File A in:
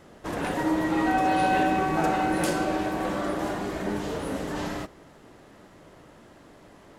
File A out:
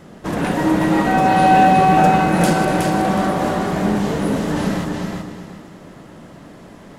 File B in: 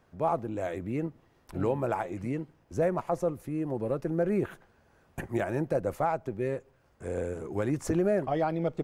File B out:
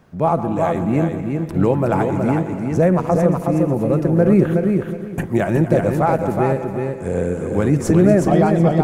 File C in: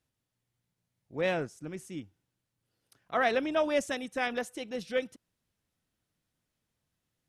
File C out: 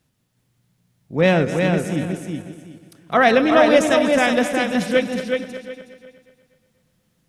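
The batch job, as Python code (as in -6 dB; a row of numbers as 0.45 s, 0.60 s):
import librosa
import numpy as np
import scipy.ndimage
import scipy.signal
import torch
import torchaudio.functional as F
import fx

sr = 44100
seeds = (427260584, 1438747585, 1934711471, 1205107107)

p1 = fx.reverse_delay_fb(x, sr, ms=121, feedback_pct=64, wet_db=-11.5)
p2 = fx.peak_eq(p1, sr, hz=180.0, db=8.5, octaves=0.92)
p3 = p2 + fx.echo_feedback(p2, sr, ms=369, feedback_pct=22, wet_db=-4.5, dry=0)
y = p3 * 10.0 ** (-1.5 / 20.0) / np.max(np.abs(p3))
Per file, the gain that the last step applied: +6.5 dB, +9.5 dB, +12.0 dB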